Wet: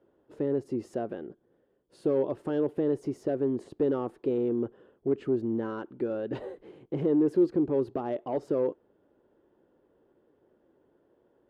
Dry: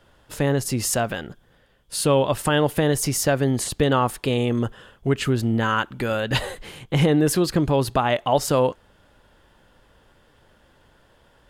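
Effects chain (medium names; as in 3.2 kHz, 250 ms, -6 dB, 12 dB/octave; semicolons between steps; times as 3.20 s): overload inside the chain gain 16 dB; band-pass filter 360 Hz, Q 2.9; trim +1 dB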